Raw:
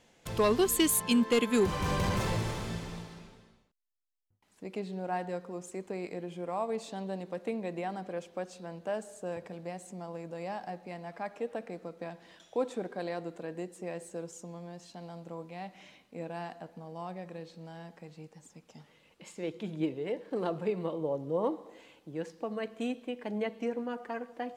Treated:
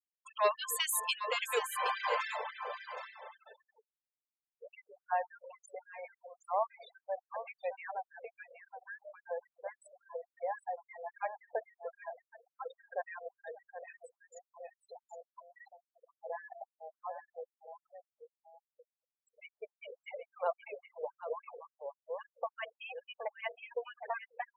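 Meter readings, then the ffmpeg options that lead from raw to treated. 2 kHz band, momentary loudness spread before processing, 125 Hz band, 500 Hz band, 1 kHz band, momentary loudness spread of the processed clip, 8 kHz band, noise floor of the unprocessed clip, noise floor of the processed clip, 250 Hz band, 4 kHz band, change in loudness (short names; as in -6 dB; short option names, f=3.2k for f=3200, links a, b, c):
+0.5 dB, 18 LU, under -40 dB, -6.5 dB, +0.5 dB, 22 LU, -5.5 dB, -67 dBFS, under -85 dBFS, under -40 dB, n/a, -5.0 dB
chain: -filter_complex "[0:a]afftfilt=real='re*gte(hypot(re,im),0.0178)':imag='im*gte(hypot(re,im),0.0178)':win_size=1024:overlap=0.75,bass=f=250:g=-10,treble=f=4k:g=-8,asplit=2[a][b];[b]alimiter=level_in=0.5dB:limit=-24dB:level=0:latency=1:release=182,volume=-0.5dB,volume=1dB[c];[a][c]amix=inputs=2:normalize=0,aecho=1:1:769:0.316,afftfilt=real='re*gte(b*sr/1024,420*pow(1600/420,0.5+0.5*sin(2*PI*3.6*pts/sr)))':imag='im*gte(b*sr/1024,420*pow(1600/420,0.5+0.5*sin(2*PI*3.6*pts/sr)))':win_size=1024:overlap=0.75,volume=-3dB"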